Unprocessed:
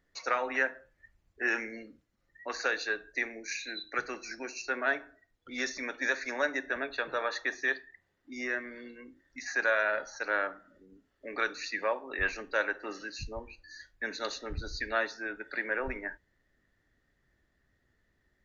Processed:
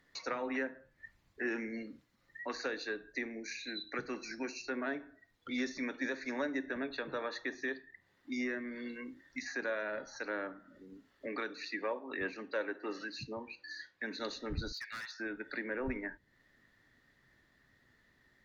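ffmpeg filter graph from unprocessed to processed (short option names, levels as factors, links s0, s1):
-filter_complex "[0:a]asettb=1/sr,asplit=3[s0][s1][s2];[s0]atrim=end=11.264[s3];[s1]atrim=start=11.26:end=14.19,asetpts=PTS-STARTPTS,afade=t=in:d=0.004:c=qsin,afade=t=out:st=2.926:d=0.004:c=qsin,highpass=200,lowpass=5400,aphaser=in_gain=1:out_gain=1:delay=3.1:decay=0.27:speed=1:type=triangular[s4];[s2]atrim=start=14.186[s5];[s3][s4]acrossfade=d=0.004:c1=hsin:c2=qsin[s6];[s6][s5]acrossfade=d=0.004:c1=qsin:c2=hsin,asettb=1/sr,asplit=3[s7][s8][s9];[s7]atrim=end=14.724[s10];[s8]atrim=start=14.72:end=15.2,asetpts=PTS-STARTPTS,afade=t=in:d=0.004:c=qsin,afade=t=out:st=0.476:d=0.004:c=qsin,highpass=f=1300:w=0.5412,highpass=f=1300:w=1.3066,asoftclip=type=hard:threshold=0.0168[s11];[s9]atrim=start=15.196[s12];[s10][s11]acrossfade=d=0.004:c1=hsin:c2=qsin[s13];[s13][s12]acrossfade=d=0.004:c1=qsin:c2=hsin,aemphasis=mode=production:type=cd,acrossover=split=420[s14][s15];[s15]acompressor=threshold=0.00282:ratio=3[s16];[s14][s16]amix=inputs=2:normalize=0,equalizer=f=125:t=o:w=1:g=8,equalizer=f=250:t=o:w=1:g=8,equalizer=f=500:t=o:w=1:g=4,equalizer=f=1000:t=o:w=1:g=10,equalizer=f=2000:t=o:w=1:g=8,equalizer=f=4000:t=o:w=1:g=9,volume=0.596"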